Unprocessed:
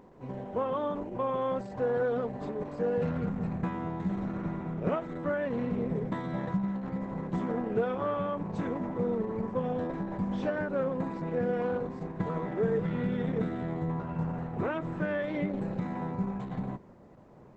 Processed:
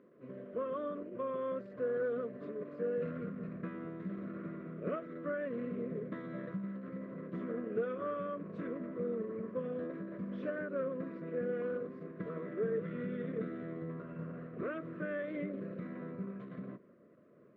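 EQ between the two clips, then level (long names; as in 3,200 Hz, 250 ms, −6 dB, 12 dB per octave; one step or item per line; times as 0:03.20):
band-pass filter 220–2,200 Hz
Butterworth band-reject 820 Hz, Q 1.9
notch filter 970 Hz, Q 12
−5.0 dB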